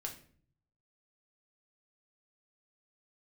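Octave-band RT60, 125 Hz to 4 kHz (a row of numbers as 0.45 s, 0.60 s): 1.1 s, 0.75 s, 0.55 s, 0.45 s, 0.45 s, 0.35 s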